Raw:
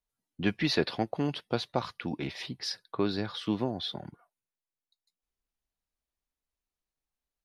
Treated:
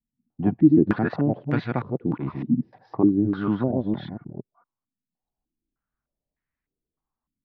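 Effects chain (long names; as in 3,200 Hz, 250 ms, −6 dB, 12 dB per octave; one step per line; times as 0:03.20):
delay that plays each chunk backwards 232 ms, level −3 dB
graphic EQ with 10 bands 125 Hz +8 dB, 250 Hz +6 dB, 500 Hz −4 dB
low-pass on a step sequencer 3.3 Hz 240–1,900 Hz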